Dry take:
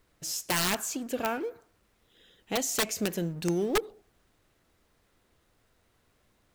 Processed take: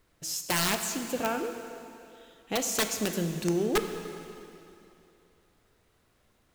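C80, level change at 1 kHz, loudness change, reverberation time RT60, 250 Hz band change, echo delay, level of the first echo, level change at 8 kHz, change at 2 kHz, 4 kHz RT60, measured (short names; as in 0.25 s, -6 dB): 8.5 dB, +1.0 dB, +0.5 dB, 2.8 s, +1.0 dB, none, none, +1.0 dB, +1.0 dB, 2.6 s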